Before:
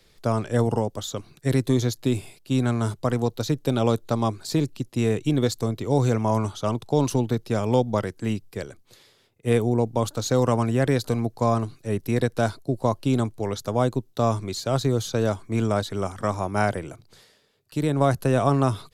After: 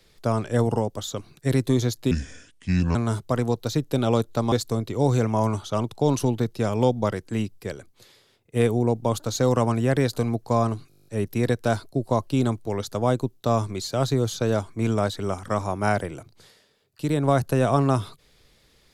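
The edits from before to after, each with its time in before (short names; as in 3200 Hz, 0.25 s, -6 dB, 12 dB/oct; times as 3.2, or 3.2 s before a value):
2.11–2.69 speed 69%
4.26–5.43 cut
11.8 stutter 0.02 s, 10 plays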